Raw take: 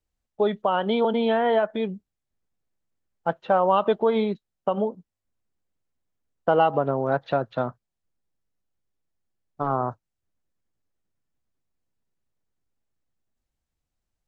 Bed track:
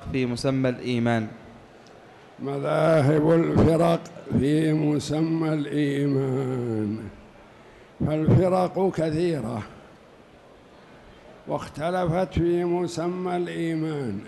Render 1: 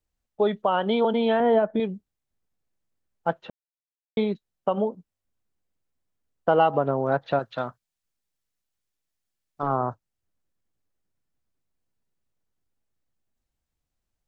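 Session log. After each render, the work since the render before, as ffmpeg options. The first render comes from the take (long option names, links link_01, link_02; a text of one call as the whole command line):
ffmpeg -i in.wav -filter_complex "[0:a]asettb=1/sr,asplit=3[link_01][link_02][link_03];[link_01]atrim=end=1.404[link_04];[link_02]atrim=start=1.4:end=1.8,asetpts=PTS-STARTPTS,afade=type=in:duration=0.004:curve=qsin,afade=type=out:start_time=0.396:duration=0.004:curve=qsin,tiltshelf=frequency=670:gain=7[link_05];[link_03]atrim=start=1.796[link_06];[link_04][link_05]acrossfade=duration=0.004:curve1=hsin:curve2=qsin[link_07];[link_07][link_06]acrossfade=duration=0.004:curve1=qsin:curve2=hsin,asettb=1/sr,asplit=3[link_08][link_09][link_10];[link_08]atrim=end=7.394[link_11];[link_09]atrim=start=7.39:end=9.63,asetpts=PTS-STARTPTS,afade=type=in:duration=0.004:curve=qsin,afade=type=out:start_time=2.236:duration=0.004:curve=qsin,tiltshelf=frequency=1300:gain=-6[link_12];[link_10]atrim=start=9.626[link_13];[link_11][link_12]acrossfade=duration=0.004:curve1=hsin:curve2=qsin[link_14];[link_14][link_13]acrossfade=duration=0.004:curve1=qsin:curve2=hsin,asplit=3[link_15][link_16][link_17];[link_15]atrim=end=3.5,asetpts=PTS-STARTPTS,afade=type=out:start_time=3.496:duration=0.004:curve=hsin[link_18];[link_16]atrim=start=3.5:end=4.17,asetpts=PTS-STARTPTS,volume=0[link_19];[link_17]atrim=start=4.17,asetpts=PTS-STARTPTS,afade=type=in:duration=0.004:curve=hsin[link_20];[link_18][link_19][link_20]concat=n=3:v=0:a=1" out.wav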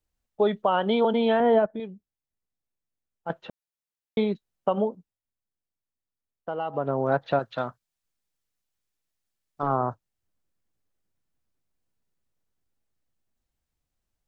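ffmpeg -i in.wav -filter_complex "[0:a]asplit=5[link_01][link_02][link_03][link_04][link_05];[link_01]atrim=end=1.662[link_06];[link_02]atrim=start=1.658:end=3.302,asetpts=PTS-STARTPTS,volume=-9dB[link_07];[link_03]atrim=start=3.298:end=5.21,asetpts=PTS-STARTPTS,afade=type=out:start_time=1.532:duration=0.38:silence=0.251189[link_08];[link_04]atrim=start=5.21:end=6.64,asetpts=PTS-STARTPTS,volume=-12dB[link_09];[link_05]atrim=start=6.64,asetpts=PTS-STARTPTS,afade=type=in:duration=0.38:silence=0.251189[link_10];[link_06][link_07]acrossfade=duration=0.004:curve1=hsin:curve2=hsin[link_11];[link_08][link_09][link_10]concat=n=3:v=0:a=1[link_12];[link_11][link_12]acrossfade=duration=0.004:curve1=hsin:curve2=hsin" out.wav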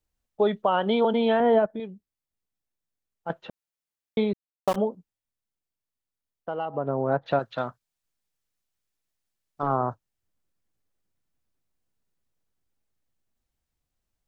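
ffmpeg -i in.wav -filter_complex "[0:a]asettb=1/sr,asplit=3[link_01][link_02][link_03];[link_01]atrim=end=4.334[link_04];[link_02]atrim=start=4.33:end=4.76,asetpts=PTS-STARTPTS,afade=type=in:duration=0.004:curve=qsin,afade=type=out:start_time=0.426:duration=0.004:curve=qsin,aeval=exprs='val(0)*gte(abs(val(0)),0.0422)':channel_layout=same[link_05];[link_03]atrim=start=4.756[link_06];[link_04][link_05]acrossfade=duration=0.004:curve1=hsin:curve2=qsin[link_07];[link_07][link_06]acrossfade=duration=0.004:curve1=qsin:curve2=hsin,asettb=1/sr,asplit=3[link_08][link_09][link_10];[link_08]atrim=end=6.654[link_11];[link_09]atrim=start=6.65:end=7.26,asetpts=PTS-STARTPTS,afade=type=in:duration=0.004:curve=qsin,afade=type=out:start_time=0.606:duration=0.004:curve=qsin,lowpass=frequency=1300:poles=1[link_12];[link_10]atrim=start=7.256[link_13];[link_11][link_12]acrossfade=duration=0.004:curve1=hsin:curve2=qsin[link_14];[link_14][link_13]acrossfade=duration=0.004:curve1=qsin:curve2=hsin" out.wav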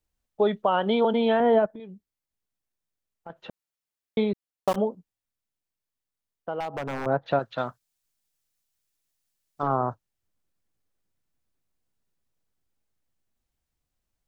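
ffmpeg -i in.wav -filter_complex "[0:a]asettb=1/sr,asplit=3[link_01][link_02][link_03];[link_01]atrim=end=1.754[link_04];[link_02]atrim=start=1.75:end=3.49,asetpts=PTS-STARTPTS,afade=type=in:duration=0.004:curve=qsin,afade=type=out:start_time=1.736:duration=0.004:curve=qsin,acompressor=threshold=-38dB:ratio=4:attack=3.2:release=140:knee=1:detection=peak[link_05];[link_03]atrim=start=3.486[link_06];[link_04][link_05]acrossfade=duration=0.004:curve1=hsin:curve2=qsin[link_07];[link_07][link_06]acrossfade=duration=0.004:curve1=qsin:curve2=hsin,asettb=1/sr,asplit=3[link_08][link_09][link_10];[link_08]atrim=end=6.604[link_11];[link_09]atrim=start=6.6:end=7.06,asetpts=PTS-STARTPTS,afade=type=in:duration=0.004:curve=qsin,afade=type=out:start_time=0.456:duration=0.004:curve=qsin,aeval=exprs='0.0596*(abs(mod(val(0)/0.0596+3,4)-2)-1)':channel_layout=same[link_12];[link_10]atrim=start=7.056[link_13];[link_11][link_12]acrossfade=duration=0.004:curve1=hsin:curve2=qsin[link_14];[link_14][link_13]acrossfade=duration=0.004:curve1=qsin:curve2=hsin,asettb=1/sr,asplit=3[link_15][link_16][link_17];[link_15]atrim=end=7.594[link_18];[link_16]atrim=start=7.59:end=9.68,asetpts=PTS-STARTPTS,afade=type=in:duration=0.004:curve=qsin,afade=type=out:start_time=2.086:duration=0.004:curve=qsin,highshelf=frequency=3700:gain=7.5[link_19];[link_17]atrim=start=9.676[link_20];[link_18][link_19]acrossfade=duration=0.004:curve1=hsin:curve2=qsin[link_21];[link_21][link_20]acrossfade=duration=0.004:curve1=qsin:curve2=hsin" out.wav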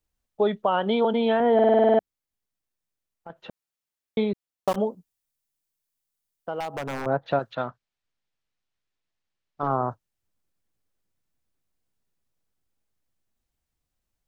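ffmpeg -i in.wav -filter_complex "[0:a]asettb=1/sr,asplit=3[link_01][link_02][link_03];[link_01]atrim=end=4.804[link_04];[link_02]atrim=start=4.8:end=7.02,asetpts=PTS-STARTPTS,afade=type=in:duration=0.004:curve=qsin,afade=type=out:start_time=2.216:duration=0.004:curve=qsin,highshelf=frequency=5000:gain=9.5[link_05];[link_03]atrim=start=7.016[link_06];[link_04][link_05]acrossfade=duration=0.004:curve1=hsin:curve2=qsin[link_07];[link_07][link_06]acrossfade=duration=0.004:curve1=qsin:curve2=hsin,asettb=1/sr,asplit=3[link_08][link_09][link_10];[link_08]atrim=end=7.554[link_11];[link_09]atrim=start=7.55:end=9.64,asetpts=PTS-STARTPTS,afade=type=in:duration=0.004:curve=qsin,afade=type=out:start_time=2.086:duration=0.004:curve=qsin,lowpass=3400[link_12];[link_10]atrim=start=9.636[link_13];[link_11][link_12]acrossfade=duration=0.004:curve1=hsin:curve2=qsin[link_14];[link_14][link_13]acrossfade=duration=0.004:curve1=qsin:curve2=hsin,asplit=10[link_15][link_16][link_17][link_18][link_19][link_20][link_21][link_22][link_23][link_24];[link_15]atrim=end=1.592[link_25];[link_16]atrim=start=1.538:end=1.592[link_26];[link_17]atrim=start=1.538:end=1.592[link_27];[link_18]atrim=start=1.538:end=1.592[link_28];[link_19]atrim=start=1.538:end=1.592[link_29];[link_20]atrim=start=1.538:end=1.592[link_30];[link_21]atrim=start=1.538:end=1.592[link_31];[link_22]atrim=start=1.538:end=1.592[link_32];[link_23]atrim=start=1.538:end=1.592[link_33];[link_24]atrim=start=1.988[link_34];[link_25][link_26]acrossfade=duration=0.004:curve1=hsin:curve2=hsin[link_35];[link_35][link_27]acrossfade=duration=0.004:curve1=hsin:curve2=hsin[link_36];[link_36][link_28]acrossfade=duration=0.004:curve1=hsin:curve2=hsin[link_37];[link_37][link_29]acrossfade=duration=0.004:curve1=hsin:curve2=hsin[link_38];[link_38][link_30]acrossfade=duration=0.004:curve1=hsin:curve2=hsin[link_39];[link_39][link_31]acrossfade=duration=0.004:curve1=hsin:curve2=hsin[link_40];[link_40][link_32]acrossfade=duration=0.004:curve1=hsin:curve2=hsin[link_41];[link_41][link_33]acrossfade=duration=0.004:curve1=hsin:curve2=hsin[link_42];[link_42][link_34]acrossfade=duration=0.004:curve1=hsin:curve2=hsin" out.wav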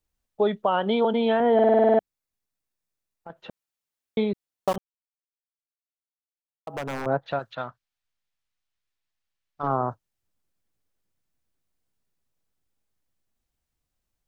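ffmpeg -i in.wav -filter_complex "[0:a]asettb=1/sr,asplit=3[link_01][link_02][link_03];[link_01]atrim=end=1.634[link_04];[link_02]atrim=start=1.63:end=3.36,asetpts=PTS-STARTPTS,afade=type=in:duration=0.004:curve=qsin,afade=type=out:start_time=1.726:duration=0.004:curve=qsin,bandreject=frequency=3100:width=16[link_05];[link_03]atrim=start=3.356[link_06];[link_04][link_05]acrossfade=duration=0.004:curve1=hsin:curve2=qsin[link_07];[link_07][link_06]acrossfade=duration=0.004:curve1=qsin:curve2=hsin,asettb=1/sr,asplit=3[link_08][link_09][link_10];[link_08]atrim=end=7.204[link_11];[link_09]atrim=start=7.2:end=9.64,asetpts=PTS-STARTPTS,afade=type=in:duration=0.004:curve=qsin,afade=type=out:start_time=2.436:duration=0.004:curve=qsin,equalizer=frequency=300:width_type=o:width=2.7:gain=-7[link_12];[link_10]atrim=start=9.636[link_13];[link_11][link_12]acrossfade=duration=0.004:curve1=hsin:curve2=qsin[link_14];[link_14][link_13]acrossfade=duration=0.004:curve1=qsin:curve2=hsin,asplit=3[link_15][link_16][link_17];[link_15]atrim=end=4.78,asetpts=PTS-STARTPTS,afade=type=out:start_time=4.776:duration=0.004:curve=hsin[link_18];[link_16]atrim=start=4.78:end=6.67,asetpts=PTS-STARTPTS,volume=0[link_19];[link_17]atrim=start=6.67,asetpts=PTS-STARTPTS,afade=type=in:duration=0.004:curve=hsin[link_20];[link_18][link_19][link_20]concat=n=3:v=0:a=1" out.wav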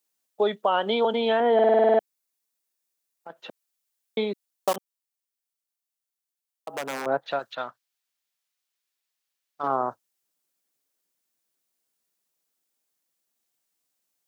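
ffmpeg -i in.wav -af "highpass=290,highshelf=frequency=4100:gain=10" out.wav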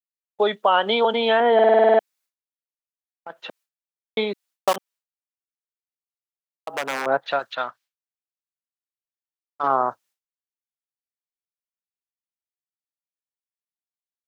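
ffmpeg -i in.wav -af "agate=range=-33dB:threshold=-53dB:ratio=3:detection=peak,equalizer=frequency=1900:width=0.35:gain=7.5" out.wav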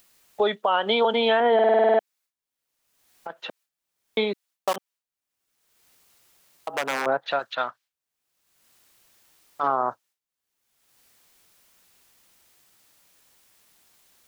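ffmpeg -i in.wav -af "acompressor=mode=upward:threshold=-33dB:ratio=2.5,alimiter=limit=-12dB:level=0:latency=1:release=138" out.wav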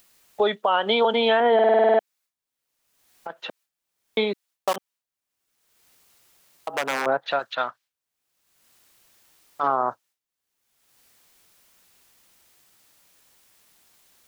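ffmpeg -i in.wav -af "volume=1dB" out.wav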